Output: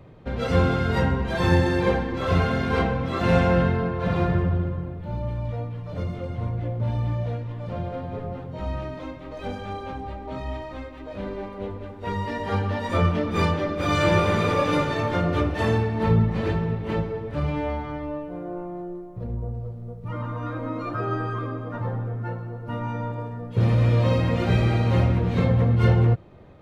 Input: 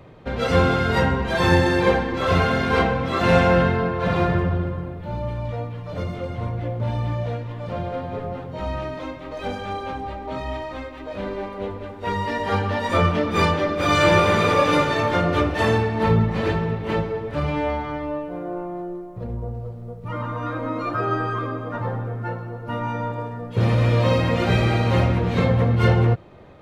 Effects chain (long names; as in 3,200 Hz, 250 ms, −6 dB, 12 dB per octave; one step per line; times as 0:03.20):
low-shelf EQ 320 Hz +6.5 dB
level −6 dB